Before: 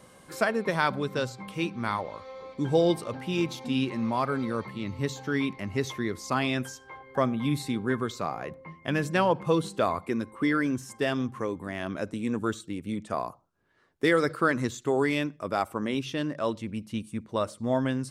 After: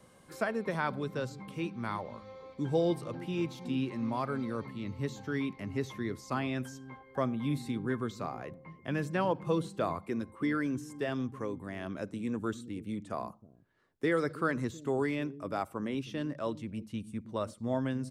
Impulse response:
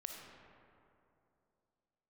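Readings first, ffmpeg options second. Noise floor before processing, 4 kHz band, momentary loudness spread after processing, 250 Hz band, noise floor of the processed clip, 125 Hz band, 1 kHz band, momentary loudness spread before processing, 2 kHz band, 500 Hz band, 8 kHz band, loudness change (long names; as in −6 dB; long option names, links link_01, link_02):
−55 dBFS, −10.0 dB, 9 LU, −5.0 dB, −59 dBFS, −4.0 dB, −7.0 dB, 9 LU, −8.0 dB, −6.0 dB, −9.5 dB, −6.0 dB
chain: -filter_complex "[0:a]lowshelf=frequency=410:gain=3.5,acrossover=split=380|1100|2600[link_01][link_02][link_03][link_04];[link_01]aecho=1:1:319:0.266[link_05];[link_04]alimiter=level_in=11.5dB:limit=-24dB:level=0:latency=1:release=17,volume=-11.5dB[link_06];[link_05][link_02][link_03][link_06]amix=inputs=4:normalize=0,volume=-7.5dB"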